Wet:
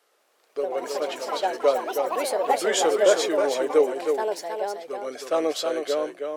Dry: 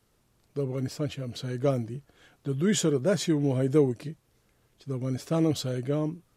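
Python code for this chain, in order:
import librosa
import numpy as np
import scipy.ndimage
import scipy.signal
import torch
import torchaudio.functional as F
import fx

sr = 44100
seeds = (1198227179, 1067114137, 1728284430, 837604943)

p1 = fx.notch(x, sr, hz=940.0, q=12.0)
p2 = fx.echo_pitch(p1, sr, ms=197, semitones=5, count=3, db_per_echo=-6.0)
p3 = scipy.signal.sosfilt(scipy.signal.butter(4, 470.0, 'highpass', fs=sr, output='sos'), p2)
p4 = fx.high_shelf(p3, sr, hz=3600.0, db=-7.0)
p5 = p4 + fx.echo_single(p4, sr, ms=317, db=-5.5, dry=0)
y = F.gain(torch.from_numpy(p5), 8.5).numpy()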